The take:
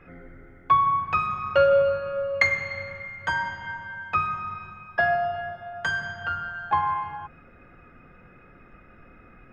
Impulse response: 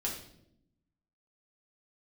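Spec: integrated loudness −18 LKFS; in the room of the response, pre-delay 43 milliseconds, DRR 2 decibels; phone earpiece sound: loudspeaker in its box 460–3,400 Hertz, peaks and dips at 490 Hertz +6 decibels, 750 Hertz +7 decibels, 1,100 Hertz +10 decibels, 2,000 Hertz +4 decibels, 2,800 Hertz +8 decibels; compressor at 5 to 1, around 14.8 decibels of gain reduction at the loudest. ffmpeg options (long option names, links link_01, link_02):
-filter_complex "[0:a]acompressor=threshold=-32dB:ratio=5,asplit=2[link_01][link_02];[1:a]atrim=start_sample=2205,adelay=43[link_03];[link_02][link_03]afir=irnorm=-1:irlink=0,volume=-5dB[link_04];[link_01][link_04]amix=inputs=2:normalize=0,highpass=460,equalizer=frequency=490:width_type=q:width=4:gain=6,equalizer=frequency=750:width_type=q:width=4:gain=7,equalizer=frequency=1100:width_type=q:width=4:gain=10,equalizer=frequency=2000:width_type=q:width=4:gain=4,equalizer=frequency=2800:width_type=q:width=4:gain=8,lowpass=frequency=3400:width=0.5412,lowpass=frequency=3400:width=1.3066,volume=8dB"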